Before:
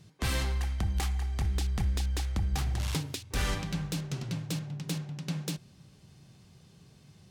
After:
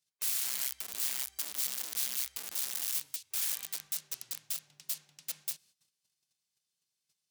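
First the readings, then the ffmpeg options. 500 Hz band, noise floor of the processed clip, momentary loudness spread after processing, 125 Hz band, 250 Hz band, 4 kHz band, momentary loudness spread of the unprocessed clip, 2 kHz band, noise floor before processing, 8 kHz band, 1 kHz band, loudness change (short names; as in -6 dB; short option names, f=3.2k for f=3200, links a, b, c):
-17.0 dB, under -85 dBFS, 7 LU, under -35 dB, under -25 dB, -0.5 dB, 5 LU, -6.5 dB, -58 dBFS, +7.0 dB, -12.5 dB, -1.0 dB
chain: -af "aeval=exprs='(mod(23.7*val(0)+1,2)-1)/23.7':c=same,agate=range=-16dB:threshold=-52dB:ratio=16:detection=peak,aderivative"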